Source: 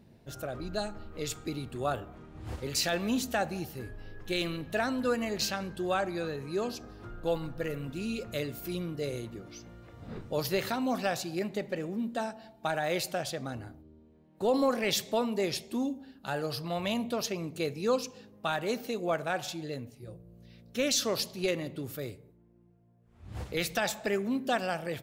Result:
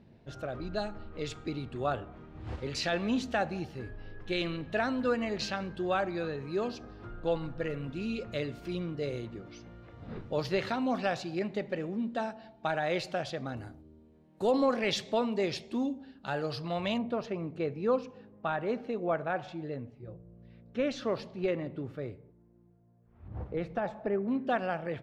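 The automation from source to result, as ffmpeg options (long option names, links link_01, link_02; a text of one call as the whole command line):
ffmpeg -i in.wav -af "asetnsamples=nb_out_samples=441:pad=0,asendcmd='13.57 lowpass f 10000;14.51 lowpass f 4400;16.98 lowpass f 1800;23.28 lowpass f 1000;24.28 lowpass f 2100',lowpass=3900" out.wav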